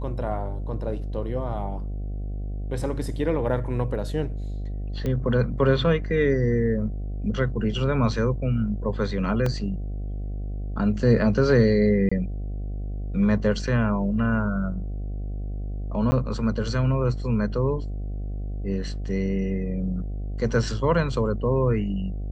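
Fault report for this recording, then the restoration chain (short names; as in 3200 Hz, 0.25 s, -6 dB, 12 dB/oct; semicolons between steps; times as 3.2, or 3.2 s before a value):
buzz 50 Hz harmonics 15 -30 dBFS
5.06 pop -17 dBFS
9.46 gap 3.3 ms
12.09–12.12 gap 25 ms
16.11–16.12 gap 10 ms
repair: de-click; de-hum 50 Hz, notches 15; interpolate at 9.46, 3.3 ms; interpolate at 12.09, 25 ms; interpolate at 16.11, 10 ms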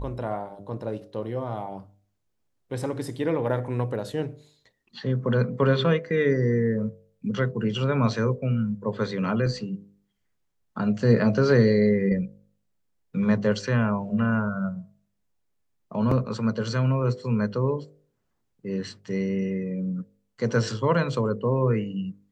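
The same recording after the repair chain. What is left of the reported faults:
none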